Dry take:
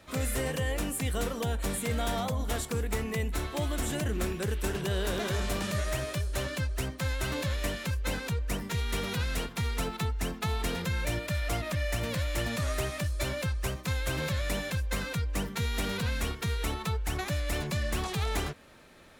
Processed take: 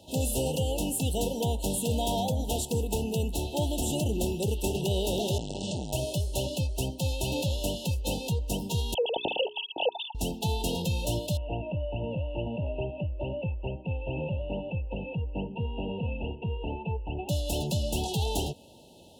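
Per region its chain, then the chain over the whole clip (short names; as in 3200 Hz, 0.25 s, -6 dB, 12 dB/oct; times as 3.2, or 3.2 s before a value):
5.38–5.93 elliptic low-pass 8500 Hz + core saturation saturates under 420 Hz
8.94–10.15 sine-wave speech + notches 60/120/180/240/300/360/420 Hz
11.37–17.29 rippled Chebyshev low-pass 2800 Hz, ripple 3 dB + bell 730 Hz -5 dB 0.34 oct
whole clip: FFT band-reject 950–2600 Hz; HPF 60 Hz; gain +3.5 dB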